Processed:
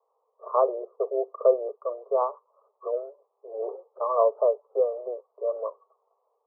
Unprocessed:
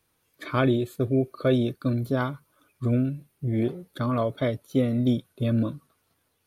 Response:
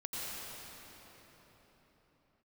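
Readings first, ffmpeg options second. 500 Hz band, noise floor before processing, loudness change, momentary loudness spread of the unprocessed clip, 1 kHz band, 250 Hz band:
+4.0 dB, −72 dBFS, −1.0 dB, 8 LU, +5.0 dB, below −20 dB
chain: -af "asuperpass=centerf=700:order=20:qfactor=0.92,volume=6.5dB"

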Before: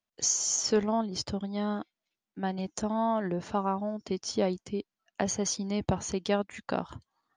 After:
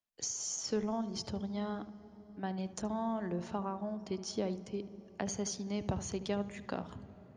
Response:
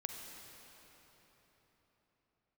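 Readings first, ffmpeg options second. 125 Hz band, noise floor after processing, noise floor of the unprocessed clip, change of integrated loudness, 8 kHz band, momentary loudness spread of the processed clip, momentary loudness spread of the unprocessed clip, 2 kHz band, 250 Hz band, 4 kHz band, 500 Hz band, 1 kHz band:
−5.0 dB, −57 dBFS, below −85 dBFS, −7.5 dB, −9.5 dB, 8 LU, 11 LU, −7.5 dB, −5.5 dB, −8.0 dB, −7.5 dB, −8.5 dB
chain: -filter_complex "[0:a]acrossover=split=340[link_01][link_02];[link_02]acompressor=threshold=-29dB:ratio=6[link_03];[link_01][link_03]amix=inputs=2:normalize=0,asplit=2[link_04][link_05];[link_05]aemphasis=mode=reproduction:type=bsi[link_06];[1:a]atrim=start_sample=2205,adelay=74[link_07];[link_06][link_07]afir=irnorm=-1:irlink=0,volume=-12dB[link_08];[link_04][link_08]amix=inputs=2:normalize=0,volume=-6dB"

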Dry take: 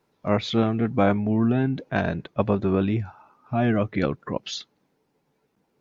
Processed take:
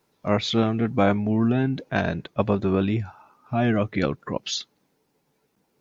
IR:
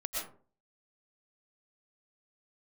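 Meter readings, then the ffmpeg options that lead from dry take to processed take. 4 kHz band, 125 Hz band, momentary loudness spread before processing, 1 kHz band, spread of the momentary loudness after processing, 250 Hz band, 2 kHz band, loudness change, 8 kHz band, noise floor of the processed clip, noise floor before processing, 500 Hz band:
+4.0 dB, 0.0 dB, 9 LU, +0.5 dB, 8 LU, 0.0 dB, +1.5 dB, 0.0 dB, can't be measured, −71 dBFS, −72 dBFS, 0.0 dB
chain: -af "highshelf=frequency=4100:gain=8.5"

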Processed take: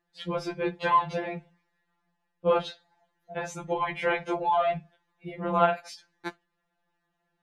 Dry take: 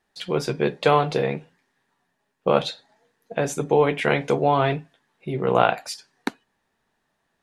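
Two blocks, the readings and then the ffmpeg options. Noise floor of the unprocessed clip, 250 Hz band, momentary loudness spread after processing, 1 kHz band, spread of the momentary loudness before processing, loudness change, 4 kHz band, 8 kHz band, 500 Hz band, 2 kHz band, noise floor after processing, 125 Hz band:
−74 dBFS, −7.5 dB, 17 LU, −3.0 dB, 14 LU, −5.0 dB, −8.5 dB, −11.0 dB, −7.5 dB, −5.0 dB, −79 dBFS, −11.5 dB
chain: -af "highshelf=frequency=5500:gain=-12,afftfilt=real='re*2.83*eq(mod(b,8),0)':imag='im*2.83*eq(mod(b,8),0)':win_size=2048:overlap=0.75,volume=-2.5dB"

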